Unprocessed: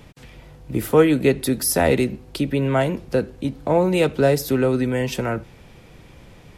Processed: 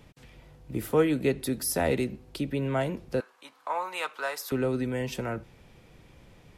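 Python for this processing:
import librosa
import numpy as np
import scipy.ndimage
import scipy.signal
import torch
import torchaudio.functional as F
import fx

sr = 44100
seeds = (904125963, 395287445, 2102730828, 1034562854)

y = fx.highpass_res(x, sr, hz=1100.0, q=3.5, at=(3.2, 4.52))
y = y * librosa.db_to_amplitude(-8.5)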